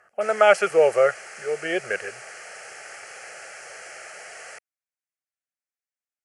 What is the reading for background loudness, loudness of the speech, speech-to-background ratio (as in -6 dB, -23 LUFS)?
-39.5 LUFS, -21.0 LUFS, 18.5 dB